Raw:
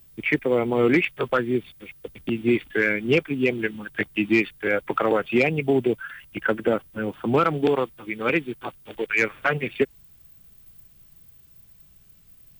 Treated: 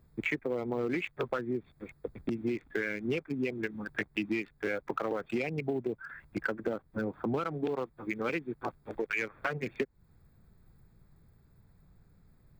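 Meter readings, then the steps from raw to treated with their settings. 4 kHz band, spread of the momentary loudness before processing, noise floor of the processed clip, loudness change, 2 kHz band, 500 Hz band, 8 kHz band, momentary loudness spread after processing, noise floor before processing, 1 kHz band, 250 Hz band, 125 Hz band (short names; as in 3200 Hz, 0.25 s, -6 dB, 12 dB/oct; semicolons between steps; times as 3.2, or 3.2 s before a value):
-11.5 dB, 11 LU, -65 dBFS, -11.5 dB, -11.0 dB, -11.0 dB, n/a, 6 LU, -54 dBFS, -11.0 dB, -10.5 dB, -10.0 dB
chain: Wiener smoothing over 15 samples; compressor 6:1, threshold -30 dBFS, peak gain reduction 14 dB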